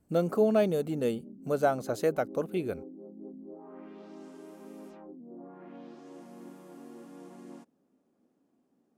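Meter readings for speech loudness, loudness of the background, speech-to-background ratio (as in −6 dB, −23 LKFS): −29.5 LKFS, −48.0 LKFS, 18.5 dB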